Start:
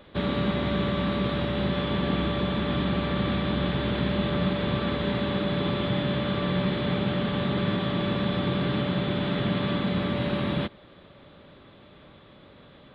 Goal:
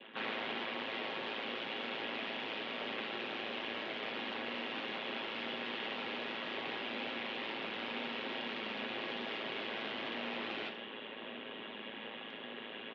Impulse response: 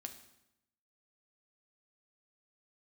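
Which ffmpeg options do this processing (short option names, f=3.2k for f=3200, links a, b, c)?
-filter_complex "[0:a]crystalizer=i=7:c=0,areverse,acompressor=threshold=-35dB:ratio=12,areverse,asplit=4[a][b][c][d];[b]asetrate=22050,aresample=44100,atempo=2,volume=-2dB[e];[c]asetrate=37084,aresample=44100,atempo=1.18921,volume=0dB[f];[d]asetrate=88200,aresample=44100,atempo=0.5,volume=-13dB[g];[a][e][f][g]amix=inputs=4:normalize=0,tremolo=f=110:d=0.857,aresample=16000,aeval=exprs='(mod(42.2*val(0)+1,2)-1)/42.2':c=same,aresample=44100,adynamicequalizer=threshold=0.00158:dfrequency=1400:dqfactor=1.1:tfrequency=1400:tqfactor=1.1:attack=5:release=100:ratio=0.375:range=3:mode=cutabove:tftype=bell[h];[1:a]atrim=start_sample=2205,asetrate=52920,aresample=44100[i];[h][i]afir=irnorm=-1:irlink=0,highpass=f=310:t=q:w=0.5412,highpass=f=310:t=q:w=1.307,lowpass=f=3.3k:t=q:w=0.5176,lowpass=f=3.3k:t=q:w=0.7071,lowpass=f=3.3k:t=q:w=1.932,afreqshift=-53,volume=10.5dB"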